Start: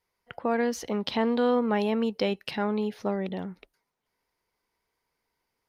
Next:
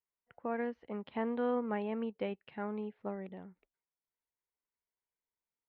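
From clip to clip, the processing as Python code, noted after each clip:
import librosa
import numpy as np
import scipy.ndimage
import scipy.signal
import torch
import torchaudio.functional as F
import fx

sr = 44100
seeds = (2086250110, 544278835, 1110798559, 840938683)

y = scipy.signal.sosfilt(scipy.signal.butter(4, 2600.0, 'lowpass', fs=sr, output='sos'), x)
y = fx.upward_expand(y, sr, threshold_db=-46.0, expansion=1.5)
y = y * librosa.db_to_amplitude(-8.5)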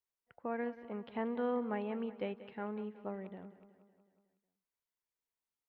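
y = fx.echo_feedback(x, sr, ms=184, feedback_pct=58, wet_db=-15.5)
y = y * librosa.db_to_amplitude(-2.0)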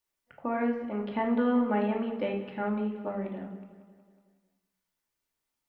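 y = fx.room_shoebox(x, sr, seeds[0], volume_m3=850.0, walls='furnished', distance_m=2.5)
y = y * librosa.db_to_amplitude(6.0)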